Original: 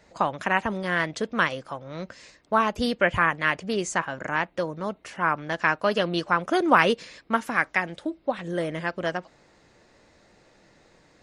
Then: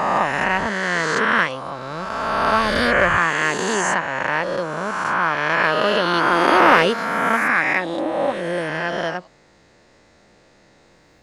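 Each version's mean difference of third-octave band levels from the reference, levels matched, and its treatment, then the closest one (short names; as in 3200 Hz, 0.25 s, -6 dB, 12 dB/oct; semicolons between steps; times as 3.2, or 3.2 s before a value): 8.5 dB: spectral swells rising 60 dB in 2.41 s; in parallel at -7 dB: hard clip -9.5 dBFS, distortion -16 dB; on the sum: gain -2.5 dB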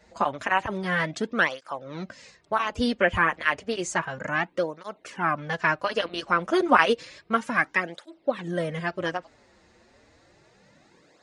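2.0 dB: downsampling 22050 Hz; tape flanging out of phase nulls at 0.31 Hz, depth 7.4 ms; gain +2.5 dB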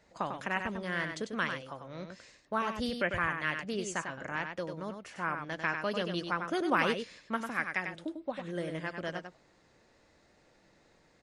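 4.0 dB: dynamic EQ 830 Hz, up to -4 dB, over -33 dBFS, Q 0.89; on a send: echo 97 ms -6.5 dB; on the sum: gain -8 dB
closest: second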